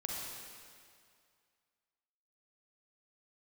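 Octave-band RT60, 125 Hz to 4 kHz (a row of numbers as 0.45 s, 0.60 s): 2.1 s, 2.1 s, 2.2 s, 2.2 s, 2.1 s, 2.0 s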